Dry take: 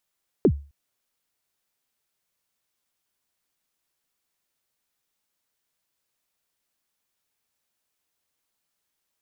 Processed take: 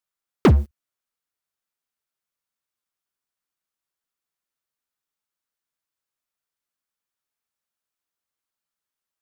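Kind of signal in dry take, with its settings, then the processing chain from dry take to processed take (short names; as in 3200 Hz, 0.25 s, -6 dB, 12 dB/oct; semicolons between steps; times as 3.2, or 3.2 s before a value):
kick drum length 0.26 s, from 470 Hz, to 71 Hz, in 68 ms, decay 0.34 s, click off, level -10 dB
bell 1300 Hz +5 dB 0.75 oct; sample leveller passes 5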